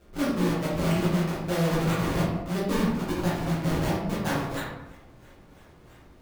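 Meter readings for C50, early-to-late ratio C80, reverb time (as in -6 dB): 0.5 dB, 4.0 dB, 1.0 s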